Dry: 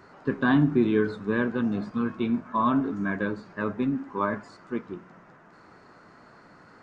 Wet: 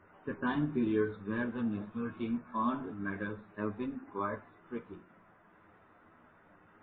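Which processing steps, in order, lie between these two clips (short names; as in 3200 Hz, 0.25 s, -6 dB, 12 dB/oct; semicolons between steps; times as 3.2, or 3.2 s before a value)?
chorus voices 6, 0.51 Hz, delay 11 ms, depth 2 ms; gain -5.5 dB; MP3 16 kbps 8000 Hz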